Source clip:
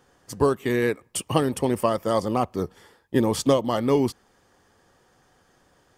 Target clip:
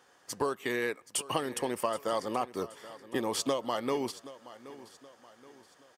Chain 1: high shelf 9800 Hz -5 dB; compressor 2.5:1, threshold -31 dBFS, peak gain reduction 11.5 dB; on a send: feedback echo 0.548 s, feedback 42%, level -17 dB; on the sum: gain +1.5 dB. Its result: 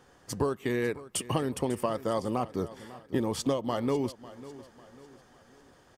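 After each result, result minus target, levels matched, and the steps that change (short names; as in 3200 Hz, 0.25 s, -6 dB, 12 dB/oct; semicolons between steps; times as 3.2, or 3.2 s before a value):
echo 0.227 s early; 1000 Hz band -3.0 dB
change: feedback echo 0.775 s, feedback 42%, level -17 dB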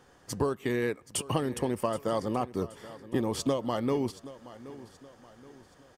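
1000 Hz band -3.0 dB
add first: HPF 770 Hz 6 dB/oct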